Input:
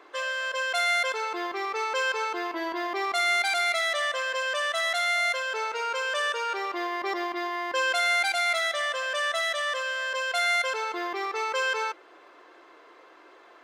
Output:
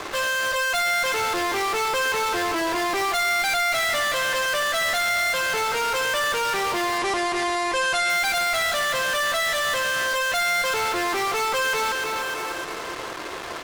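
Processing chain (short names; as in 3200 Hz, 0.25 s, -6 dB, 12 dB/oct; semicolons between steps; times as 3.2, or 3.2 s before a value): feedback echo 0.304 s, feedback 45%, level -14 dB; in parallel at -7 dB: fuzz box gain 55 dB, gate -53 dBFS; 6.98–8.1 on the sum: steep low-pass 11000 Hz 72 dB/oct; gain -5.5 dB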